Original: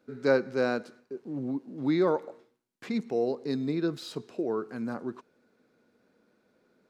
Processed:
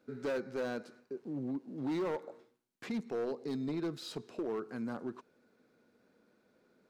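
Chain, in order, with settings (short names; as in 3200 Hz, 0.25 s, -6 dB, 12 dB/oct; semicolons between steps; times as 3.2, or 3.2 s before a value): in parallel at +1.5 dB: compressor, threshold -37 dBFS, peak gain reduction 18 dB; on the sum: overloaded stage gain 22.5 dB; gain -8.5 dB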